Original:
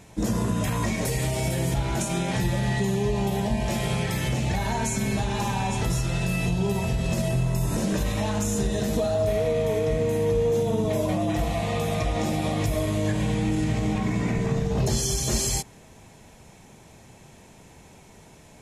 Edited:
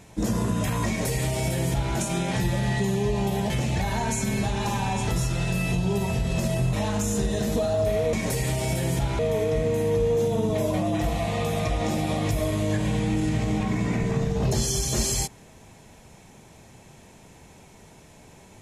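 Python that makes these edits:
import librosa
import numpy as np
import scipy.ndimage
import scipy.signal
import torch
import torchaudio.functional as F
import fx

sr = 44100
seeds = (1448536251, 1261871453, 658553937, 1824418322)

y = fx.edit(x, sr, fx.duplicate(start_s=0.88, length_s=1.06, to_s=9.54),
    fx.cut(start_s=3.5, length_s=0.74),
    fx.cut(start_s=7.47, length_s=0.67), tone=tone)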